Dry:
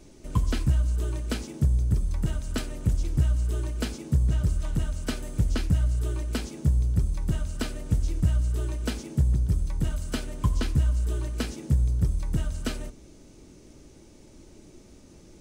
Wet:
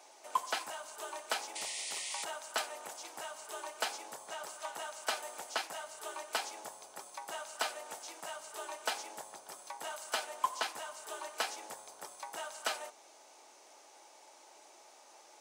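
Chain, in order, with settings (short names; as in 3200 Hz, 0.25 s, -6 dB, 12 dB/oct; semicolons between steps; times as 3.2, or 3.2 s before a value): painted sound noise, 1.55–2.25, 1800–10000 Hz -41 dBFS; ladder high-pass 710 Hz, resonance 60%; gain +10.5 dB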